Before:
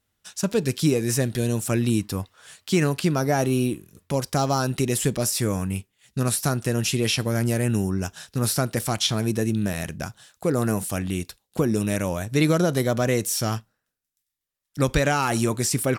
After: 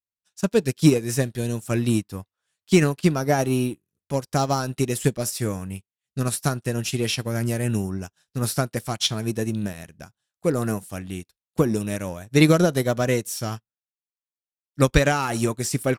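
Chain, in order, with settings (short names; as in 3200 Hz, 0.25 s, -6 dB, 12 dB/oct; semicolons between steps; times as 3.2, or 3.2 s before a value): in parallel at -8 dB: soft clip -25.5 dBFS, distortion -7 dB; on the sum: upward expander 2.5:1, over -41 dBFS; gain +5.5 dB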